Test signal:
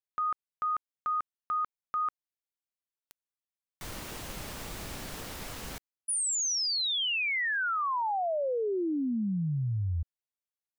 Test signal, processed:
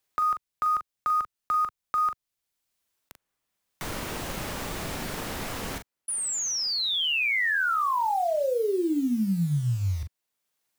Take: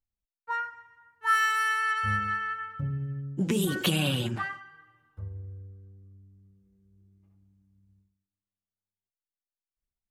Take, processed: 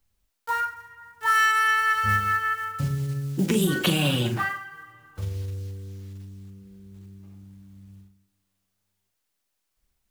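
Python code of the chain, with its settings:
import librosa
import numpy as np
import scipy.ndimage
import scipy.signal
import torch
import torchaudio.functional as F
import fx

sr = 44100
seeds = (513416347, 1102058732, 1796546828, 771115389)

y = fx.block_float(x, sr, bits=5)
y = fx.doubler(y, sr, ms=41.0, db=-8)
y = fx.band_squash(y, sr, depth_pct=40)
y = y * librosa.db_to_amplitude(4.0)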